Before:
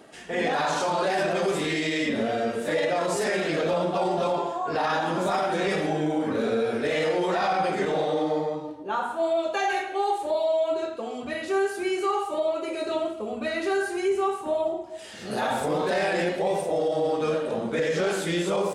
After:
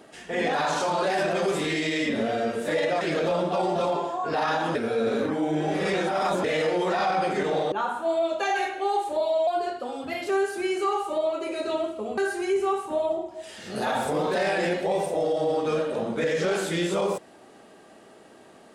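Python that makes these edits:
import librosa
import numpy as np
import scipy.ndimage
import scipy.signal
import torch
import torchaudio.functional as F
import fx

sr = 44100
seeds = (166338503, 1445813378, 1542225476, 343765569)

y = fx.edit(x, sr, fx.cut(start_s=3.01, length_s=0.42),
    fx.reverse_span(start_s=5.17, length_s=1.69),
    fx.cut(start_s=8.14, length_s=0.72),
    fx.speed_span(start_s=10.61, length_s=0.9, speed=1.09),
    fx.cut(start_s=13.39, length_s=0.34), tone=tone)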